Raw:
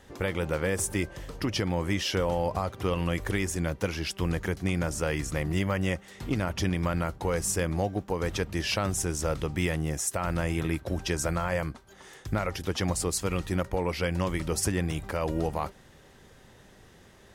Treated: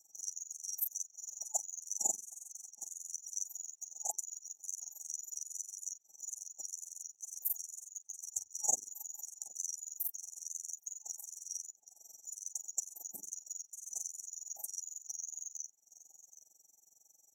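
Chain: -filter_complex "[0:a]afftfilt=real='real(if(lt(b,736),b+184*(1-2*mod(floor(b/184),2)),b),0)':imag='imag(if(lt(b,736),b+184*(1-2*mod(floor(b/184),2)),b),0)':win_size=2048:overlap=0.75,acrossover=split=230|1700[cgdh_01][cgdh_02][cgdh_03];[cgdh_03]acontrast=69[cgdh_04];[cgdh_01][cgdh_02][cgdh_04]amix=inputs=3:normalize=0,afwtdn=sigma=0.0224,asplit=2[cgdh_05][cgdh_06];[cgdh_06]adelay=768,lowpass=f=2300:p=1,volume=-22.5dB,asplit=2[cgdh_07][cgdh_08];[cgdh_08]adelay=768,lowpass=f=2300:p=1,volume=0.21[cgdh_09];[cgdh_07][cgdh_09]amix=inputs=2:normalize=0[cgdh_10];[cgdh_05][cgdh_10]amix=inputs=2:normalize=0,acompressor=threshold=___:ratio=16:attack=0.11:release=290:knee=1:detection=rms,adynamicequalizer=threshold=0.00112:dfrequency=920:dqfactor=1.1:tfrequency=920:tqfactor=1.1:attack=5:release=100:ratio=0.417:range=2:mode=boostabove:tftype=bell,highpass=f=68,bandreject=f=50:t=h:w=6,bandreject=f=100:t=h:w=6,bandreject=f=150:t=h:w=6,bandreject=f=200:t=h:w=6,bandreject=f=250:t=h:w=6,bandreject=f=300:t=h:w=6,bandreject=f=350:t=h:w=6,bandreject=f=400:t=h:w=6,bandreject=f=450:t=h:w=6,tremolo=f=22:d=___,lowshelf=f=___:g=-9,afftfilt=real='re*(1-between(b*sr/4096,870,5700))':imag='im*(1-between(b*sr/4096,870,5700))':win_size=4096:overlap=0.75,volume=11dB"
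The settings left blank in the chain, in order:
-28dB, 0.947, 230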